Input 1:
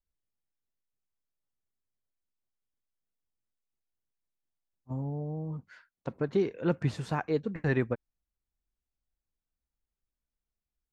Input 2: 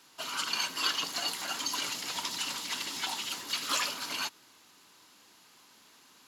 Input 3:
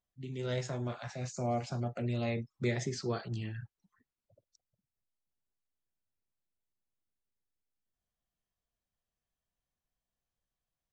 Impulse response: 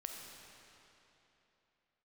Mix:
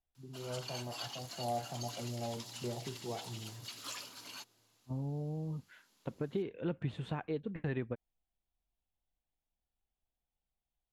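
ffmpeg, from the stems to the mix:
-filter_complex "[0:a]highshelf=f=4.2k:t=q:w=3:g=-7.5,acompressor=threshold=-32dB:ratio=2.5,volume=-2dB[a];[1:a]adelay=150,volume=-11.5dB[b];[2:a]lowpass=f=830:t=q:w=5.3,volume=-10dB,asplit=2[c][d];[d]volume=-10.5dB[e];[3:a]atrim=start_sample=2205[f];[e][f]afir=irnorm=-1:irlink=0[g];[a][b][c][g]amix=inputs=4:normalize=0,equalizer=f=1.5k:t=o:w=2.3:g=-5"

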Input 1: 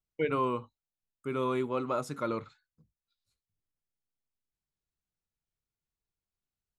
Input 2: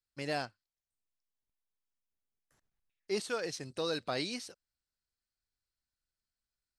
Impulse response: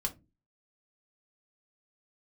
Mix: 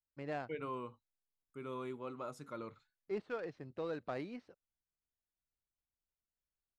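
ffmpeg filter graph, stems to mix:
-filter_complex "[0:a]adelay=300,volume=-12.5dB[a];[1:a]acrossover=split=3100[b][c];[c]acompressor=threshold=-49dB:ratio=4:attack=1:release=60[d];[b][d]amix=inputs=2:normalize=0,adynamicsmooth=sensitivity=2.5:basefreq=1.5k,volume=-4.5dB[e];[a][e]amix=inputs=2:normalize=0"

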